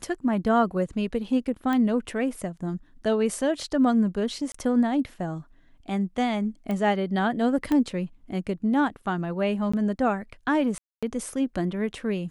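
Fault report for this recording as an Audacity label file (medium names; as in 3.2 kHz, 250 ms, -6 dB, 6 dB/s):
1.730000	1.730000	pop -16 dBFS
4.520000	4.540000	dropout 24 ms
6.710000	6.710000	pop -19 dBFS
7.720000	7.720000	pop -14 dBFS
9.720000	9.730000	dropout 15 ms
10.780000	11.030000	dropout 246 ms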